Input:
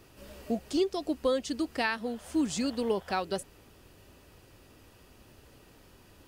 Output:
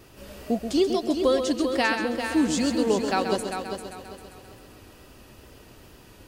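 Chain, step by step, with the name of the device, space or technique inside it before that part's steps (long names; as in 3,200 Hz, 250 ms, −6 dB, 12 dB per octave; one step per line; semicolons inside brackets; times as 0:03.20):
multi-head tape echo (echo machine with several playback heads 132 ms, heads first and third, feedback 50%, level −8 dB; tape wow and flutter 25 cents)
level +5.5 dB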